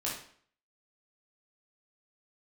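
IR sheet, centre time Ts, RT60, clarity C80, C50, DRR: 40 ms, 0.55 s, 8.5 dB, 4.0 dB, -6.0 dB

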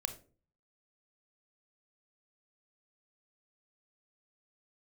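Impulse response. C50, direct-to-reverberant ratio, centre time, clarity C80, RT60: 12.0 dB, 7.5 dB, 9 ms, 17.0 dB, 0.40 s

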